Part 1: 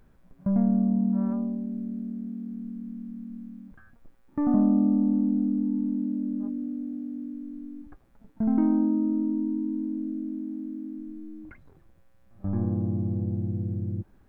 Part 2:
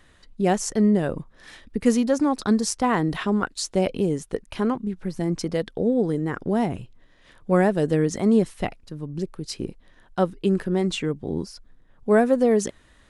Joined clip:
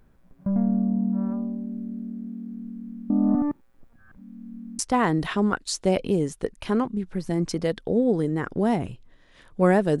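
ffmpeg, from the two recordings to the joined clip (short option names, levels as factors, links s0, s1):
-filter_complex "[0:a]apad=whole_dur=10,atrim=end=10,asplit=2[s0][s1];[s0]atrim=end=3.102[s2];[s1]atrim=start=3.098:end=4.792,asetpts=PTS-STARTPTS,areverse[s3];[1:a]atrim=start=2.688:end=7.9[s4];[s2][s3]acrossfade=d=0.004:c1=hsin:c2=hsin[s5];[s5][s4]acrossfade=d=0.004:c1=hsin:c2=hsin"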